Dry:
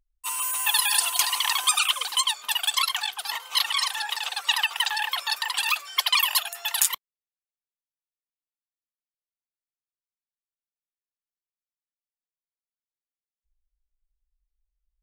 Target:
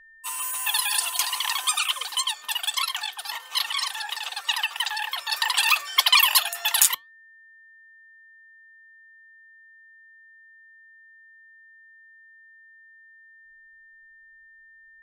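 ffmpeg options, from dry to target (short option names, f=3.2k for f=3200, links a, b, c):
-filter_complex "[0:a]flanger=delay=3.3:depth=1.7:regen=-87:speed=1.8:shape=sinusoidal,aeval=exprs='val(0)+0.00251*sin(2*PI*1800*n/s)':c=same,asplit=3[a][b][c];[a]afade=t=out:st=5.32:d=0.02[d];[b]acontrast=72,afade=t=in:st=5.32:d=0.02,afade=t=out:st=6.93:d=0.02[e];[c]afade=t=in:st=6.93:d=0.02[f];[d][e][f]amix=inputs=3:normalize=0,volume=2.5dB"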